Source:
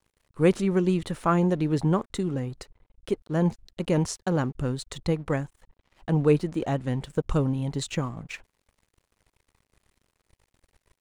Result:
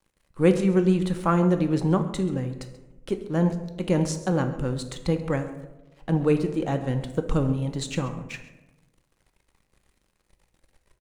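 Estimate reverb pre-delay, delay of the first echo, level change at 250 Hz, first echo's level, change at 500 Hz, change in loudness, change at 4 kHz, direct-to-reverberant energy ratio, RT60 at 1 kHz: 3 ms, 134 ms, +2.0 dB, −18.0 dB, +1.0 dB, +1.5 dB, +0.5 dB, 6.5 dB, 0.95 s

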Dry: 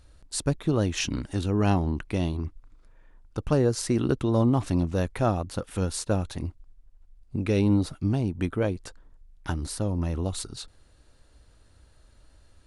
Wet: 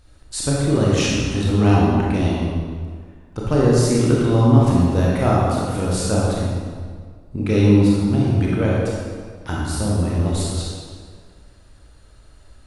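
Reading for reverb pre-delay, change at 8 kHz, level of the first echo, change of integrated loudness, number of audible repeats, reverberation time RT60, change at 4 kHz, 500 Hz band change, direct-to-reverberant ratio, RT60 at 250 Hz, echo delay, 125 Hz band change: 26 ms, +7.0 dB, no echo audible, +8.5 dB, no echo audible, 1.8 s, +8.0 dB, +8.0 dB, −5.5 dB, 1.8 s, no echo audible, +9.5 dB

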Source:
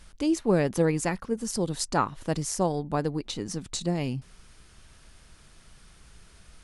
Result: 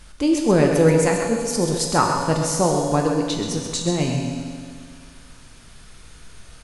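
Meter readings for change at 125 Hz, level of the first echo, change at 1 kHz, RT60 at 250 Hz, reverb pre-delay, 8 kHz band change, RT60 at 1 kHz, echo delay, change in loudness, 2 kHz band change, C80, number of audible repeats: +8.0 dB, −8.0 dB, +8.5 dB, 2.1 s, 3 ms, +8.5 dB, 2.1 s, 131 ms, +8.0 dB, +8.5 dB, 3.0 dB, 1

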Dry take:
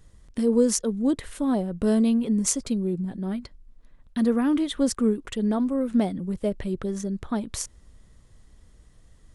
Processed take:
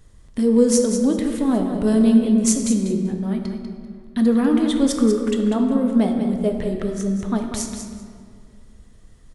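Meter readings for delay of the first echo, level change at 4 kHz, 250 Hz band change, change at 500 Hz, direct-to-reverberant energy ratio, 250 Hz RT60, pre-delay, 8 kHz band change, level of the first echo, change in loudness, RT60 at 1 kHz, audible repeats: 194 ms, +4.0 dB, +6.0 dB, +5.5 dB, 2.0 dB, 2.5 s, 3 ms, +4.0 dB, −8.5 dB, +5.5 dB, 2.0 s, 2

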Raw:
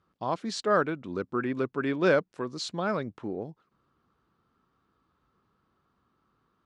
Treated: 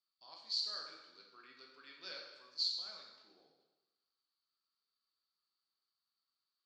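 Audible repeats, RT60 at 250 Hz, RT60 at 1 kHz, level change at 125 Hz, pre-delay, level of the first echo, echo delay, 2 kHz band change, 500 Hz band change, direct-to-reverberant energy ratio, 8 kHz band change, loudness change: no echo audible, 1.1 s, 1.1 s, below −40 dB, 5 ms, no echo audible, no echo audible, −22.5 dB, −33.0 dB, −1.0 dB, −12.5 dB, −10.0 dB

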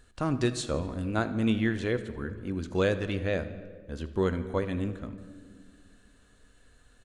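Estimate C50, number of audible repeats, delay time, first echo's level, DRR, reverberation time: 12.0 dB, 3, 80 ms, −18.5 dB, 10.0 dB, 1.7 s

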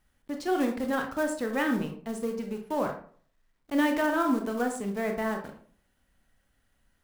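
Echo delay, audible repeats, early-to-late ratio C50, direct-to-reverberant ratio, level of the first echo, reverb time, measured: no echo audible, no echo audible, 8.0 dB, 3.5 dB, no echo audible, 0.50 s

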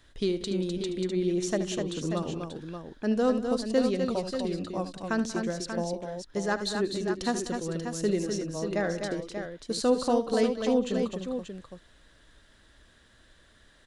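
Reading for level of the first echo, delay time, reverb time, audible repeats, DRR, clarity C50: −13.0 dB, 75 ms, no reverb audible, 4, no reverb audible, no reverb audible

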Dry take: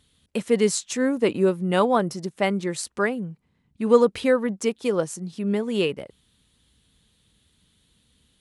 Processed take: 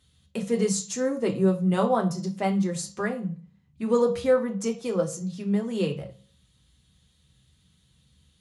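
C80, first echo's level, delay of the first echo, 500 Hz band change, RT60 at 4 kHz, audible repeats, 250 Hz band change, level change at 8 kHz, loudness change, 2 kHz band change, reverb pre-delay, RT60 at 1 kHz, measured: 18.0 dB, no echo audible, no echo audible, −3.5 dB, 0.35 s, no echo audible, −1.0 dB, −1.5 dB, −3.0 dB, −7.0 dB, 3 ms, 0.40 s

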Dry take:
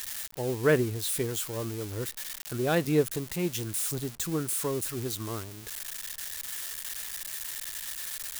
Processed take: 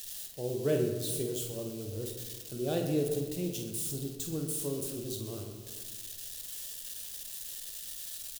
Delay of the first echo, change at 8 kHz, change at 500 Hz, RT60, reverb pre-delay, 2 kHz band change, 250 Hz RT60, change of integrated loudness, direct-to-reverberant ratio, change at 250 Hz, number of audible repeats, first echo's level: 49 ms, −4.5 dB, −4.0 dB, 1.7 s, 5 ms, −15.0 dB, 1.8 s, −4.5 dB, 1.5 dB, −3.5 dB, 2, −7.0 dB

